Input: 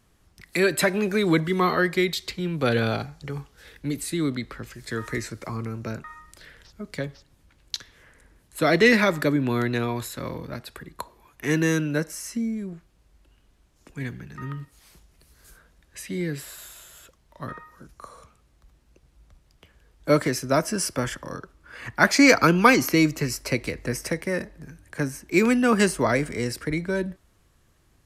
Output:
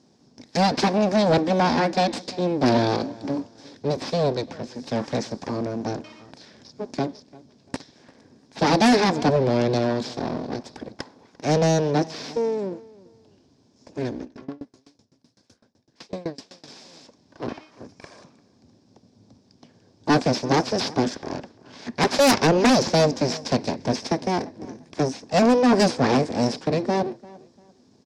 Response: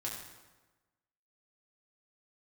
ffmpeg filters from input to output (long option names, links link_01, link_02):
-filter_complex "[0:a]equalizer=frequency=2000:width_type=o:width=2.1:gain=-10,aeval=exprs='abs(val(0))':channel_layout=same,highpass=160,equalizer=frequency=250:width_type=q:width=4:gain=8,equalizer=frequency=1300:width_type=q:width=4:gain=-9,equalizer=frequency=2000:width_type=q:width=4:gain=-5,equalizer=frequency=2900:width_type=q:width=4:gain=-6,equalizer=frequency=5200:width_type=q:width=4:gain=7,lowpass=frequency=5900:width=0.5412,lowpass=frequency=5900:width=1.3066,asplit=2[link_01][link_02];[link_02]adelay=345,lowpass=frequency=3300:poles=1,volume=-22dB,asplit=2[link_03][link_04];[link_04]adelay=345,lowpass=frequency=3300:poles=1,volume=0.27[link_05];[link_01][link_03][link_05]amix=inputs=3:normalize=0,aeval=exprs='0.596*sin(PI/2*5.01*val(0)/0.596)':channel_layout=same,asettb=1/sr,asplit=3[link_06][link_07][link_08];[link_06]atrim=end=14.234[link_09];[link_07]atrim=start=14.23:end=16.68,asetpts=PTS-STARTPTS,afade=type=in:duration=0.004:curve=qsin,afade=type=out:start_time=2.446:duration=0.004:curve=qsin,aeval=exprs='val(0)*pow(10,-27*if(lt(mod(7.9*n/s,1),2*abs(7.9)/1000),1-mod(7.9*n/s,1)/(2*abs(7.9)/1000),(mod(7.9*n/s,1)-2*abs(7.9)/1000)/(1-2*abs(7.9)/1000))/20)':channel_layout=same[link_10];[link_08]atrim=start=16.676[link_11];[link_09][link_10]acrossfade=duration=0.004:curve1=hsin:curve2=qsin[link_12];[link_12][link_11]acrossfade=duration=0.004:curve1=qsin:curve2=hsin,volume=-7.5dB"